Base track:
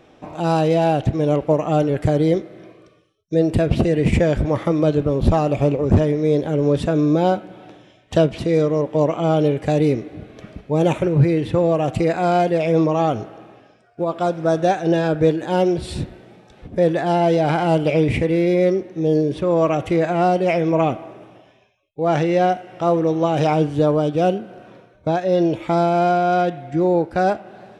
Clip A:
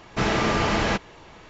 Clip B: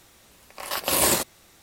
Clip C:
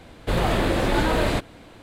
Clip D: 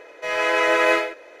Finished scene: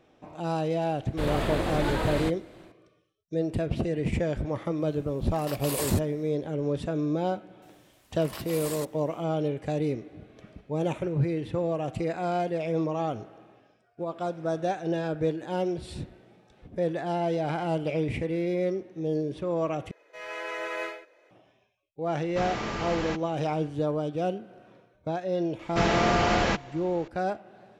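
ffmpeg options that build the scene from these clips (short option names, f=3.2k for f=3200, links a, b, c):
-filter_complex "[2:a]asplit=2[a][b];[1:a]asplit=2[c][d];[0:a]volume=-11dB[e];[3:a]dynaudnorm=f=170:g=3:m=6dB[f];[b]alimiter=limit=-16dB:level=0:latency=1:release=133[g];[e]asplit=2[h][i];[h]atrim=end=19.914[j];[4:a]atrim=end=1.4,asetpts=PTS-STARTPTS,volume=-15.5dB[k];[i]atrim=start=21.306[l];[f]atrim=end=1.82,asetpts=PTS-STARTPTS,volume=-12.5dB,afade=t=in:d=0.004:c=hsin,afade=t=out:st=1.816:d=0.004:c=hsin,adelay=900[m];[a]atrim=end=1.62,asetpts=PTS-STARTPTS,volume=-11.5dB,afade=t=in:d=0.1,afade=t=out:st=1.52:d=0.1,adelay=4760[n];[g]atrim=end=1.62,asetpts=PTS-STARTPTS,volume=-10dB,afade=t=in:d=0.004:c=hsin,afade=t=out:st=1.616:d=0.004:c=hsin,adelay=336042S[o];[c]atrim=end=1.49,asetpts=PTS-STARTPTS,volume=-10dB,afade=t=in:d=0.004:c=hsin,afade=t=out:st=1.486:d=0.004:c=hsin,adelay=22190[p];[d]atrim=end=1.49,asetpts=PTS-STARTPTS,volume=-2.5dB,afade=t=in:d=0.004:c=hsin,afade=t=out:st=1.486:d=0.004:c=hsin,adelay=25590[q];[j][k]acrossfade=d=0.004:c1=hsin:c2=hsin[r];[r][l]acrossfade=d=0.004:c1=hsin:c2=hsin[s];[s][m][n][o][p][q]amix=inputs=6:normalize=0"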